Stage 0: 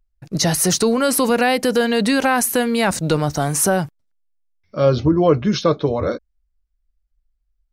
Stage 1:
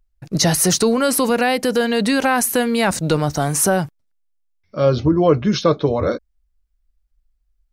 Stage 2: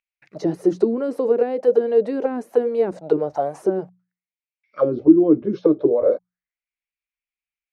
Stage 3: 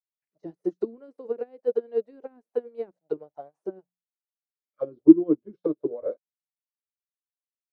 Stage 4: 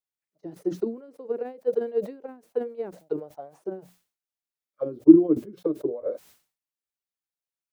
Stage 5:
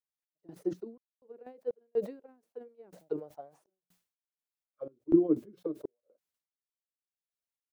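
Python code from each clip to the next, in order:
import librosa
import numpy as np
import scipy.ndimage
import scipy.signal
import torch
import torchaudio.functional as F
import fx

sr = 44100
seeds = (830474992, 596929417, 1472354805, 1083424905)

y1 = fx.rider(x, sr, range_db=5, speed_s=2.0)
y2 = fx.auto_wah(y1, sr, base_hz=310.0, top_hz=2400.0, q=6.1, full_db=-12.0, direction='down')
y2 = fx.hum_notches(y2, sr, base_hz=60, count=3)
y2 = y2 * librosa.db_to_amplitude(7.5)
y3 = fx.upward_expand(y2, sr, threshold_db=-35.0, expansion=2.5)
y3 = y3 * librosa.db_to_amplitude(1.0)
y4 = fx.sustainer(y3, sr, db_per_s=140.0)
y5 = fx.tremolo_random(y4, sr, seeds[0], hz=4.1, depth_pct=100)
y5 = y5 * librosa.db_to_amplitude(-4.5)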